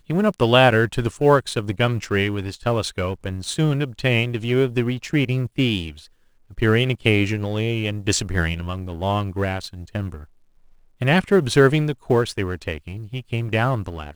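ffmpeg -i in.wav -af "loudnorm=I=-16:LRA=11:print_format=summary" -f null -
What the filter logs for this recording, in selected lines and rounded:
Input Integrated:    -21.1 LUFS
Input True Peak:      -1.1 dBTP
Input LRA:             2.5 LU
Input Threshold:     -31.6 LUFS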